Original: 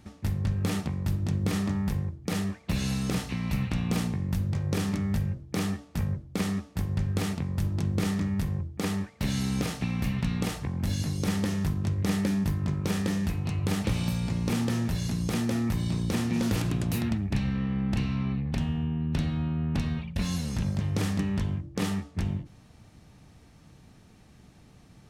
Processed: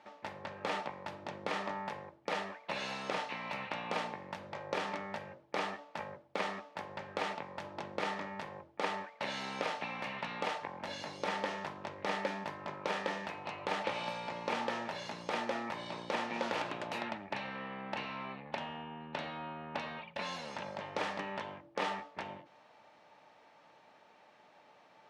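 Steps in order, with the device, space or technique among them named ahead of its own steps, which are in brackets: tin-can telephone (band-pass 650–3000 Hz; small resonant body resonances 590/870 Hz, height 9 dB, ringing for 25 ms); trim +1 dB

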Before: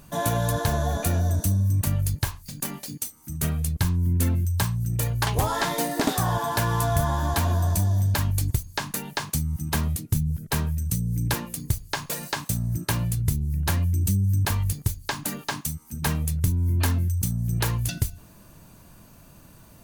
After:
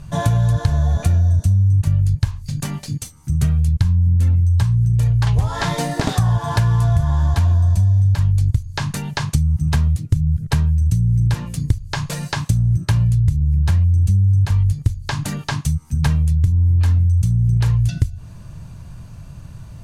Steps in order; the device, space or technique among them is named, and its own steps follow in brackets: jukebox (low-pass 7.5 kHz 12 dB/octave; resonant low shelf 180 Hz +11.5 dB, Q 1.5; compression 5:1, threshold -18 dBFS, peak gain reduction 13 dB); trim +4.5 dB

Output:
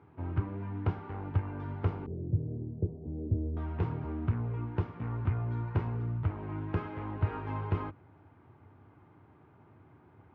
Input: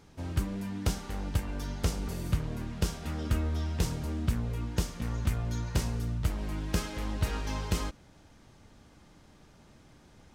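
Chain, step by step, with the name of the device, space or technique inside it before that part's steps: bass cabinet (cabinet simulation 89–2000 Hz, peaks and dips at 98 Hz +8 dB, 200 Hz -9 dB, 370 Hz +4 dB, 550 Hz -7 dB, 950 Hz +3 dB, 1.8 kHz -6 dB); 2.06–3.57 s: steep low-pass 550 Hz 36 dB/octave

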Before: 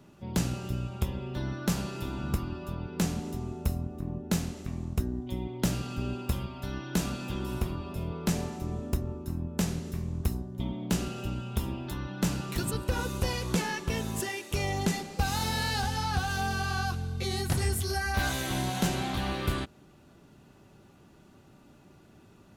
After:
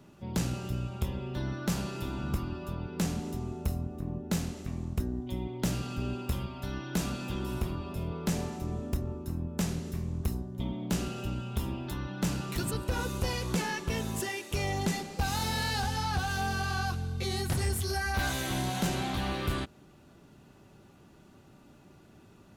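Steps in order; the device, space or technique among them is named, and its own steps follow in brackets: saturation between pre-emphasis and de-emphasis (treble shelf 7.3 kHz +9 dB; saturation -21 dBFS, distortion -18 dB; treble shelf 7.3 kHz -9 dB)

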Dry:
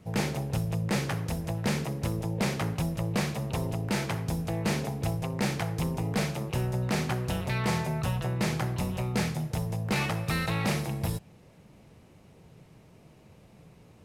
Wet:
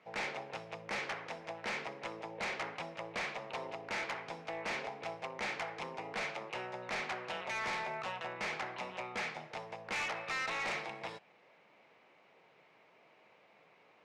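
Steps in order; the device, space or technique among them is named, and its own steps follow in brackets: megaphone (band-pass 680–3000 Hz; peaking EQ 2.2 kHz +5 dB 0.32 oct; hard clipper -34 dBFS, distortion -9 dB); low-pass 7.8 kHz 12 dB/octave

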